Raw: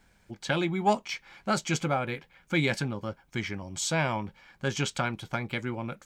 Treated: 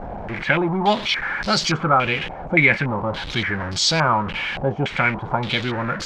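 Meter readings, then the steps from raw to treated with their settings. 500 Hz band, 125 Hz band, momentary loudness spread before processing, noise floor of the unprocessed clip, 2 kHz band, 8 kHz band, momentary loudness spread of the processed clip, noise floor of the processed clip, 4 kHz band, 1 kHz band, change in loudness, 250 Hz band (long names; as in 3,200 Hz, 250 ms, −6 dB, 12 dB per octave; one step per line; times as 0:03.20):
+8.0 dB, +7.5 dB, 10 LU, −64 dBFS, +13.0 dB, +5.5 dB, 8 LU, −32 dBFS, +13.0 dB, +10.5 dB, +10.0 dB, +7.0 dB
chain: converter with a step at zero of −29.5 dBFS
low-pass on a step sequencer 3.5 Hz 730–4,800 Hz
level +4 dB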